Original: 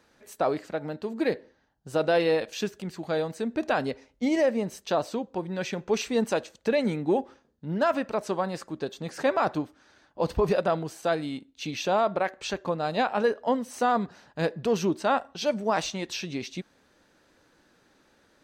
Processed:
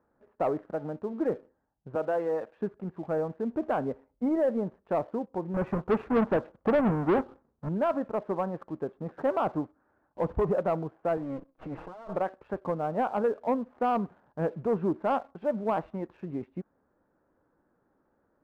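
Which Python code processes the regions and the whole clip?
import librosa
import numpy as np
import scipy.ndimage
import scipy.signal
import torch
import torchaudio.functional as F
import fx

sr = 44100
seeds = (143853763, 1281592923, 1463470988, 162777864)

y = fx.chain(x, sr, fx.low_shelf(hz=390.0, db=-10.5),
    fx.band_squash(depth_pct=40), at=(1.95, 2.57))
y = fx.chain(y, sr, fx.halfwave_hold(),
    fx.high_shelf(hz=4300.0, db=9.0), at=(5.54, 7.69))
y = fx.chain(y, sr, fx.lower_of_two(delay_ms=6.3),
    fx.over_compress(threshold_db=-35.0, ratio=-1.0),
    fx.low_shelf(hz=190.0, db=-5.5), at=(11.17, 12.16))
y = scipy.signal.sosfilt(scipy.signal.butter(4, 1300.0, 'lowpass', fs=sr, output='sos'), y)
y = fx.leveller(y, sr, passes=1)
y = y * 10.0 ** (-5.0 / 20.0)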